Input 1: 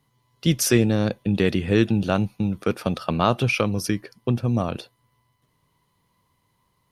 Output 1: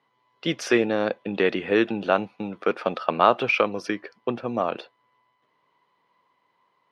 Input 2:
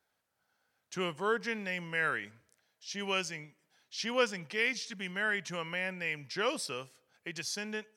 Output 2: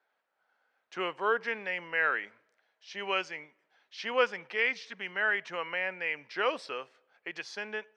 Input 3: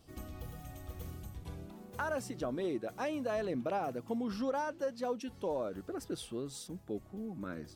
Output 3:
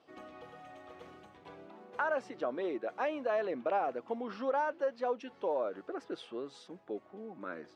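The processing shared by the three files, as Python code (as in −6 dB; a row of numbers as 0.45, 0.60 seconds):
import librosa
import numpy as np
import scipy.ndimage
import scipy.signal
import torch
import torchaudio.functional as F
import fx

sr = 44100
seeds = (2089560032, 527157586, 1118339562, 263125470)

y = fx.bandpass_edges(x, sr, low_hz=440.0, high_hz=2500.0)
y = F.gain(torch.from_numpy(y), 4.5).numpy()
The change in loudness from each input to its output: −1.5, +2.5, +2.5 LU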